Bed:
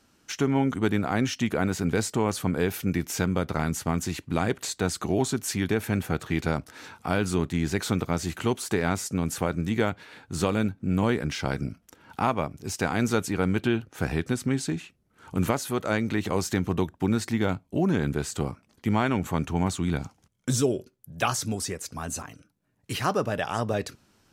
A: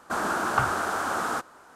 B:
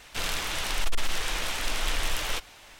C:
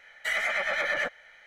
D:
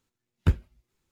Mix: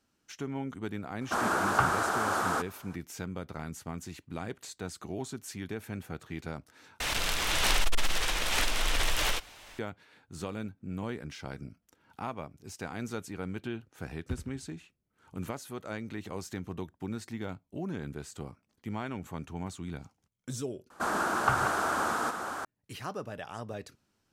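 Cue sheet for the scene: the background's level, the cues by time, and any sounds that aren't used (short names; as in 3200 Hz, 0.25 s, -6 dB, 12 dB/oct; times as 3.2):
bed -12.5 dB
1.21 add A -1.5 dB
7 replace with B -1.5 dB + backwards sustainer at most 22 dB/s
13.83 add D -15.5 dB + feedback echo 81 ms, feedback 50%, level -9 dB
20.9 replace with A -2.5 dB + reverse delay 0.675 s, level -6 dB
not used: C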